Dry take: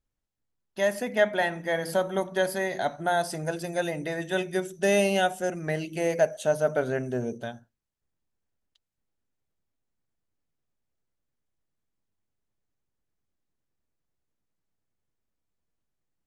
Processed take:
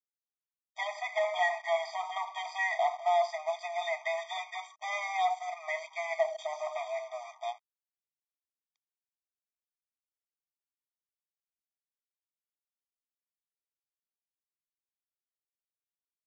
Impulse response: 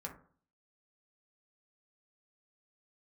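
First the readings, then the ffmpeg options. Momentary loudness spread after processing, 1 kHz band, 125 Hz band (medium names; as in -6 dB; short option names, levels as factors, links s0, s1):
11 LU, +0.5 dB, under -40 dB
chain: -filter_complex "[0:a]asplit=2[s0][s1];[s1]highpass=f=720:p=1,volume=20,asoftclip=type=tanh:threshold=0.335[s2];[s0][s2]amix=inputs=2:normalize=0,lowpass=f=3100:p=1,volume=0.501,bass=f=250:g=-5,treble=f=4000:g=-12,aresample=16000,aeval=exprs='sgn(val(0))*max(abs(val(0))-0.015,0)':c=same,aresample=44100,afftfilt=real='re*eq(mod(floor(b*sr/1024/630),2),1)':imag='im*eq(mod(floor(b*sr/1024/630),2),1)':win_size=1024:overlap=0.75,volume=0.473"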